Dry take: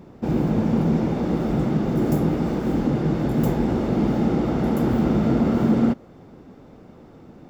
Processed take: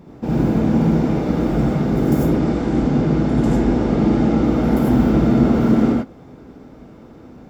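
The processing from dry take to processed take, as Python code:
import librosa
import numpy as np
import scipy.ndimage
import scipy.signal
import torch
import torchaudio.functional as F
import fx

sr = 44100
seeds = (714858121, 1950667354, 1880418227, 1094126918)

y = fx.lowpass(x, sr, hz=9000.0, slope=24, at=(2.29, 4.42))
y = fx.rev_gated(y, sr, seeds[0], gate_ms=120, shape='rising', drr_db=-2.0)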